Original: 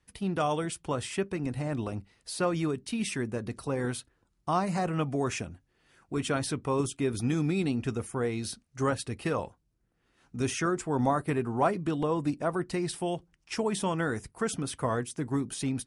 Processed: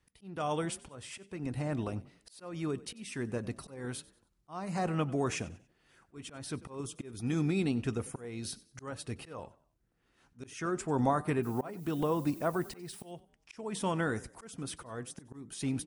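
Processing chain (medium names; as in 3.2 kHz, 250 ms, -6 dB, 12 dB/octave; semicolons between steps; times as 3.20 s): 11.42–13.06 s: added noise violet -52 dBFS; slow attack 374 ms; frequency-shifting echo 94 ms, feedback 34%, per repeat +35 Hz, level -20 dB; trim -2 dB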